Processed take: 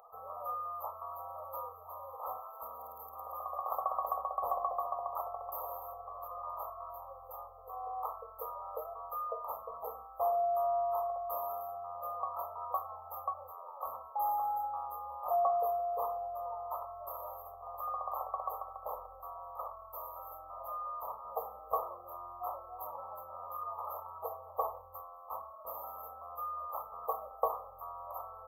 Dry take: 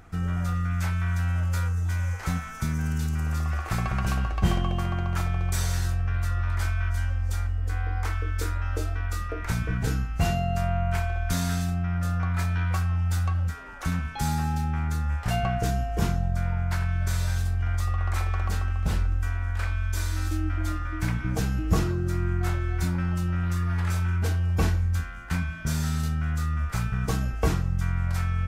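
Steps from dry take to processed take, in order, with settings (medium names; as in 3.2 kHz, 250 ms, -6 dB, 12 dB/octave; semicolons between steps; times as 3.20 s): elliptic high-pass 520 Hz, stop band 40 dB; in parallel at -10 dB: saturation -24 dBFS, distortion -22 dB; on the sum: brick-wall FIR band-stop 1.3–12 kHz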